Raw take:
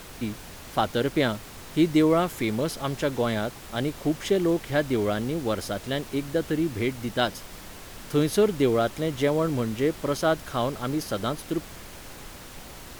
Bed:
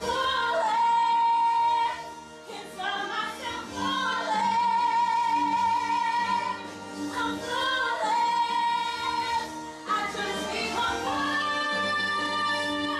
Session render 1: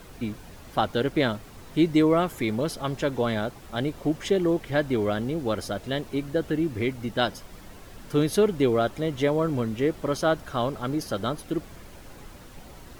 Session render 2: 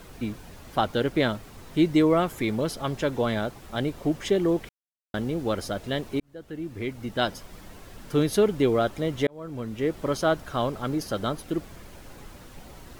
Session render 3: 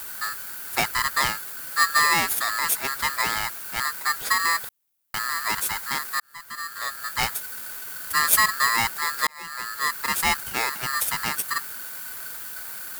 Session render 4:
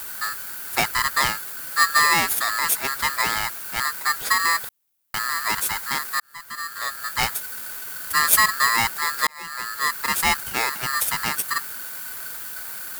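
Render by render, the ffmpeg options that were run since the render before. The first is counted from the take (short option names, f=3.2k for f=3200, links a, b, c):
-af "afftdn=nr=8:nf=-43"
-filter_complex "[0:a]asplit=5[a][b][c][d][e];[a]atrim=end=4.69,asetpts=PTS-STARTPTS,afade=t=out:st=4.686:d=0.004:c=hsin[f];[b]atrim=start=4.69:end=5.14,asetpts=PTS-STARTPTS,volume=0[g];[c]atrim=start=5.14:end=6.2,asetpts=PTS-STARTPTS,afade=t=in:d=0.004:c=hsin,afade=t=out:st=1.056:d=0.004:c=hsin[h];[d]atrim=start=6.2:end=9.27,asetpts=PTS-STARTPTS,afade=t=in:d=1.13,afade=t=out:st=3.066:d=0.004:c=hsin[i];[e]atrim=start=9.27,asetpts=PTS-STARTPTS,afade=t=in:d=0.73[j];[f][g][h][i][j]concat=n=5:v=0:a=1"
-af "aexciter=amount=14.3:drive=3.9:freq=9.2k,aeval=exprs='val(0)*sgn(sin(2*PI*1500*n/s))':c=same"
-af "volume=2dB"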